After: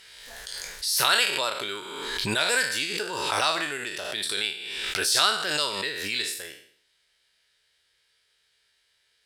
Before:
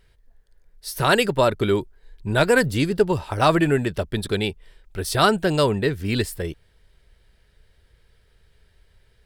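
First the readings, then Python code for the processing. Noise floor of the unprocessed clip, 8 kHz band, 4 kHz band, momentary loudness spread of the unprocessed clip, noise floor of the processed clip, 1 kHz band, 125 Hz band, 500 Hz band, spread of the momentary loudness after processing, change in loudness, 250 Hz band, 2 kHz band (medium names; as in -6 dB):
-60 dBFS, +6.0 dB, +5.0 dB, 13 LU, -70 dBFS, -5.5 dB, -19.5 dB, -12.5 dB, 14 LU, -4.0 dB, -16.0 dB, -0.5 dB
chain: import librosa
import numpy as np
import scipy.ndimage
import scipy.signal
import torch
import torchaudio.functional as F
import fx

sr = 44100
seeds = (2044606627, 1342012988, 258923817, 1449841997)

y = fx.spec_trails(x, sr, decay_s=0.58)
y = fx.bandpass_q(y, sr, hz=5500.0, q=0.71)
y = fx.pre_swell(y, sr, db_per_s=29.0)
y = y * librosa.db_to_amplitude(1.5)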